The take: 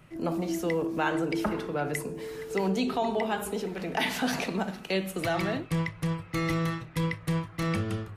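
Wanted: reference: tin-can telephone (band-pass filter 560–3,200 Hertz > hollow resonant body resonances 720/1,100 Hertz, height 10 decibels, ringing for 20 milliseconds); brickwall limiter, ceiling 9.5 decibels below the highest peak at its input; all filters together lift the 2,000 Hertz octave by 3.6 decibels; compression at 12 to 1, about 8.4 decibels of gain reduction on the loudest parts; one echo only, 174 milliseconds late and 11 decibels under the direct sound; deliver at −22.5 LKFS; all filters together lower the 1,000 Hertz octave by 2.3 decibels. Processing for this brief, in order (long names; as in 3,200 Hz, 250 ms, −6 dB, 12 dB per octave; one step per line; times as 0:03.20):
parametric band 1,000 Hz −3.5 dB
parametric band 2,000 Hz +6 dB
downward compressor 12 to 1, threshold −31 dBFS
brickwall limiter −26.5 dBFS
band-pass filter 560–3,200 Hz
single-tap delay 174 ms −11 dB
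hollow resonant body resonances 720/1,100 Hz, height 10 dB, ringing for 20 ms
level +15.5 dB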